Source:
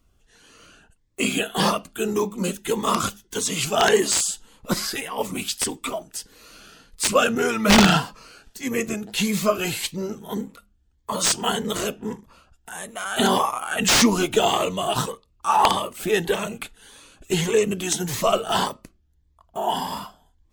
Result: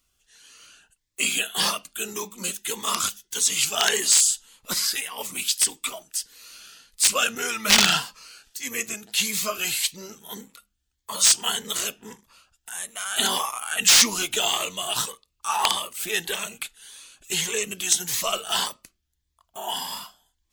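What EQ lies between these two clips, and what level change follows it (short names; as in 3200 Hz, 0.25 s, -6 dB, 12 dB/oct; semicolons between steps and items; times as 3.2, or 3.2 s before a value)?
tilt shelf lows -10 dB, about 1300 Hz; -4.5 dB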